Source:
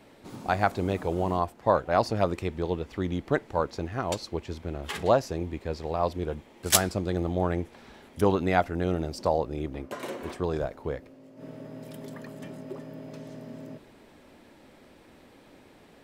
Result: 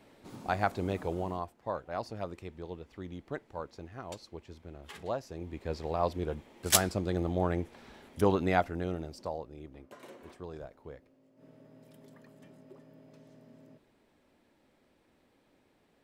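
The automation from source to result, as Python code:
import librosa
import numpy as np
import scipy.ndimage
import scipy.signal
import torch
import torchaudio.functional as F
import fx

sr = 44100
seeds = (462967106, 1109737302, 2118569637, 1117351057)

y = fx.gain(x, sr, db=fx.line((1.08, -5.0), (1.58, -13.0), (5.24, -13.0), (5.71, -3.0), (8.52, -3.0), (9.5, -14.5)))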